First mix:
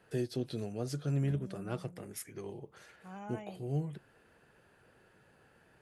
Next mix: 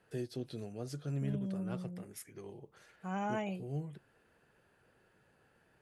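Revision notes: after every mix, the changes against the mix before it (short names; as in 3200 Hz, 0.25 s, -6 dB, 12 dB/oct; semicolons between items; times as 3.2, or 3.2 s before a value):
first voice -5.0 dB; second voice +9.5 dB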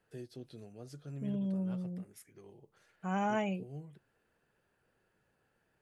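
first voice -7.0 dB; second voice +4.0 dB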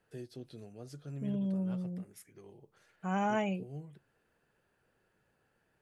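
first voice: send +6.0 dB; second voice: send on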